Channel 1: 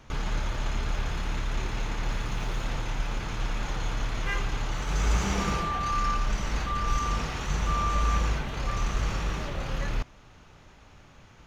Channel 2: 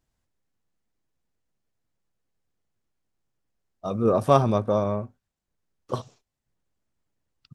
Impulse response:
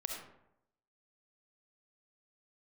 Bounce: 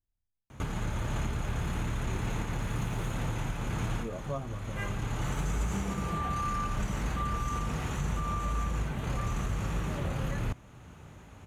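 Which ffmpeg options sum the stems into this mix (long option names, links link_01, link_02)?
-filter_complex "[0:a]highpass=110,aexciter=amount=8.8:drive=7.1:freq=7500,adelay=500,volume=0.5dB[link_01];[1:a]asplit=2[link_02][link_03];[link_03]adelay=8.5,afreqshift=0.43[link_04];[link_02][link_04]amix=inputs=2:normalize=1,volume=-17.5dB,asplit=2[link_05][link_06];[link_06]apad=whole_len=527862[link_07];[link_01][link_07]sidechaincompress=threshold=-45dB:ratio=8:attack=16:release=764[link_08];[link_08][link_05]amix=inputs=2:normalize=0,aemphasis=mode=reproduction:type=bsi,alimiter=limit=-22.5dB:level=0:latency=1:release=410"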